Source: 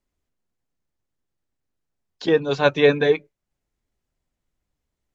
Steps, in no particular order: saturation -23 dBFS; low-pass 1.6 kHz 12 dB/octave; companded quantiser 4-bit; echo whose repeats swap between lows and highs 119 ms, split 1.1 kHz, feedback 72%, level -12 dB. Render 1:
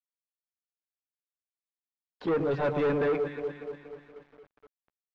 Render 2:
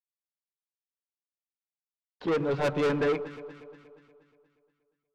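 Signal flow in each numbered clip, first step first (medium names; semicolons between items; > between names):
echo whose repeats swap between lows and highs > companded quantiser > saturation > low-pass; companded quantiser > low-pass > saturation > echo whose repeats swap between lows and highs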